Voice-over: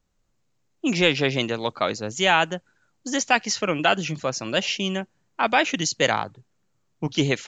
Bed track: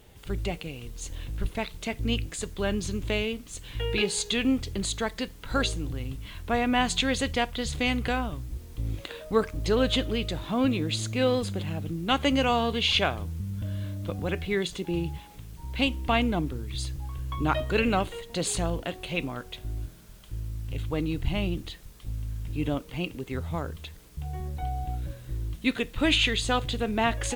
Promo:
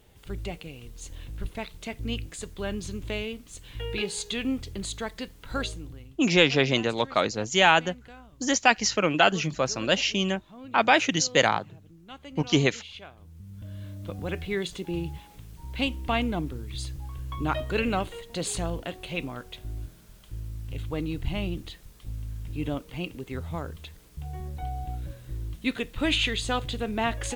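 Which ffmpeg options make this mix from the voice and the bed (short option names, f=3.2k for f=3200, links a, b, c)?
-filter_complex "[0:a]adelay=5350,volume=0dB[a];[1:a]volume=14dB,afade=t=out:st=5.58:d=0.61:silence=0.158489,afade=t=in:st=13.15:d=1.2:silence=0.125893[b];[a][b]amix=inputs=2:normalize=0"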